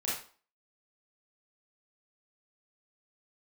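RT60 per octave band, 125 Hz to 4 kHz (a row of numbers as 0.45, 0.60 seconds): 0.30, 0.40, 0.40, 0.45, 0.35, 0.35 seconds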